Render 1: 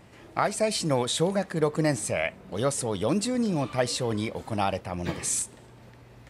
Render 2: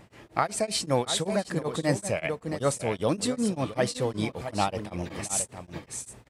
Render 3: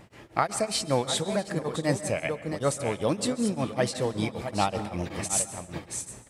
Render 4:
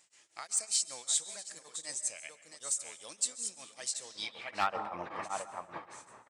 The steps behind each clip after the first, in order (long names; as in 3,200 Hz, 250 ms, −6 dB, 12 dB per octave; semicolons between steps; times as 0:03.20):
on a send: single-tap delay 672 ms −9 dB; on the sum: tremolo along a rectified sine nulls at 5.2 Hz; level +1.5 dB
speech leveller within 3 dB 2 s; dense smooth reverb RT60 0.86 s, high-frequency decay 0.6×, pre-delay 120 ms, DRR 13.5 dB
band-pass filter sweep 7,400 Hz → 1,100 Hz, 0:04.02–0:04.79; downsampling to 22,050 Hz; hard clipping −24 dBFS, distortion −24 dB; level +5 dB